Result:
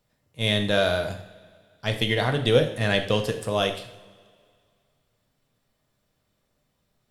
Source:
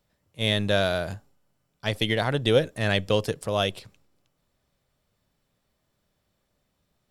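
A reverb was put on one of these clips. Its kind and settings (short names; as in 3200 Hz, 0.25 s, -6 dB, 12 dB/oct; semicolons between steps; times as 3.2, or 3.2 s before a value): two-slope reverb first 0.56 s, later 2.2 s, from -18 dB, DRR 4.5 dB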